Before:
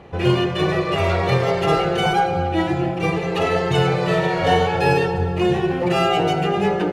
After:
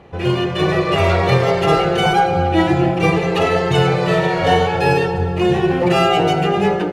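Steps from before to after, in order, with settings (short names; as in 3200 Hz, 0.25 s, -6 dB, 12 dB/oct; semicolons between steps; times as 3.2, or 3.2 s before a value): AGC; gain -1 dB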